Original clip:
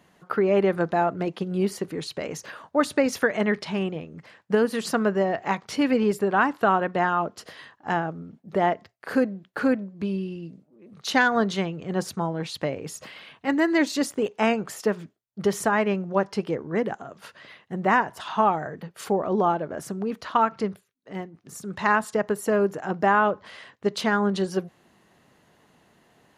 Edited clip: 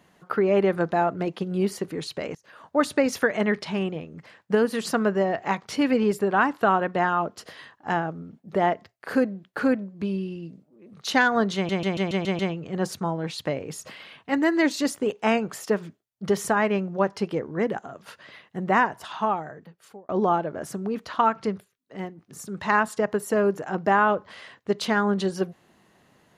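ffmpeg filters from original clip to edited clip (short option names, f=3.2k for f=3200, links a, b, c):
-filter_complex "[0:a]asplit=9[a][b][c][d][e][f][g][h][i];[a]atrim=end=2.35,asetpts=PTS-STARTPTS,afade=t=out:st=2.346:d=0.004:c=hsin:silence=0.0668344[j];[b]atrim=start=2.35:end=11.692,asetpts=PTS-STARTPTS,afade=t=in:d=0.32:c=qua:silence=0.0668344[k];[c]atrim=start=11.548:end=11.692[l];[d]atrim=start=11.548:end=11.692[m];[e]atrim=start=11.548:end=11.692[n];[f]atrim=start=11.548:end=11.692[o];[g]atrim=start=11.548:end=11.692[p];[h]atrim=start=11.548:end=19.25,asetpts=PTS-STARTPTS,afade=t=out:st=6.442:d=1.26[q];[i]atrim=start=19.25,asetpts=PTS-STARTPTS,afade=t=in:d=0.004:c=hsin[r];[j][k]concat=n=2:v=0:a=1[s];[s][l]acrossfade=d=0.004:c1=hsin:c2=hsin[t];[t][m]acrossfade=d=0.004:c1=hsin:c2=hsin[u];[u][n]acrossfade=d=0.004:c1=hsin:c2=hsin[v];[v][o]acrossfade=d=0.004:c1=hsin:c2=hsin[w];[w][p]acrossfade=d=0.004:c1=hsin:c2=hsin[x];[q][r]concat=n=2:v=0:a=1[y];[x][y]acrossfade=d=0.004:c1=hsin:c2=hsin"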